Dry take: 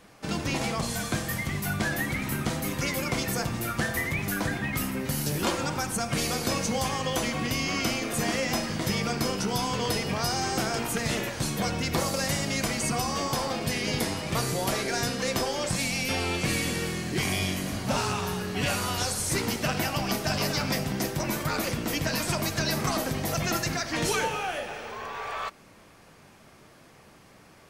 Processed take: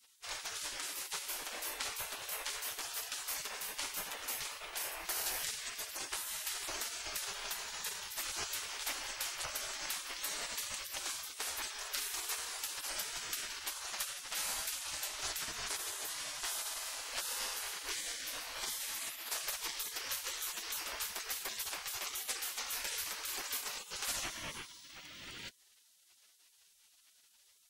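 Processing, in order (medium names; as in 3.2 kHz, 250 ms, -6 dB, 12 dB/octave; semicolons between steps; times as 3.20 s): 20.05–21.21 s: crackle 130 per s -52 dBFS; spectral gate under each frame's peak -20 dB weak; trim -1.5 dB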